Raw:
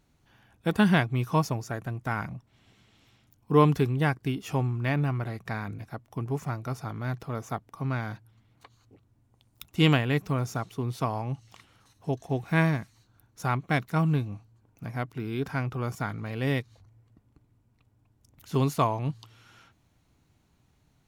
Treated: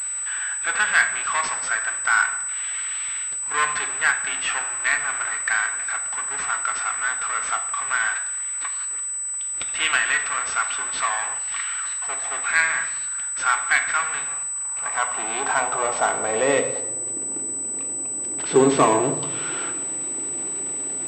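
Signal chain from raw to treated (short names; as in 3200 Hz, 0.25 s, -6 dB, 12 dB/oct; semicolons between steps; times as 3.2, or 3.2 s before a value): power-law curve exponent 0.5; high-pass sweep 1500 Hz -> 350 Hz, 14.18–17.29; on a send at -5 dB: reverb RT60 0.90 s, pre-delay 3 ms; on the sum: pulse-width modulation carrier 8000 Hz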